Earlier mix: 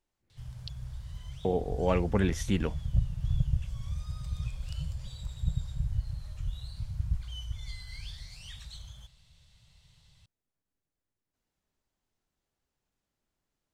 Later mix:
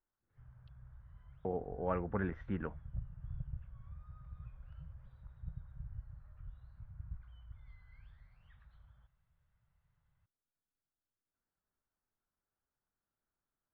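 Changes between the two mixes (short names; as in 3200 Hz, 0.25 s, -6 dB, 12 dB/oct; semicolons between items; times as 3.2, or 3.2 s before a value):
background -5.5 dB; master: add ladder low-pass 1700 Hz, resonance 50%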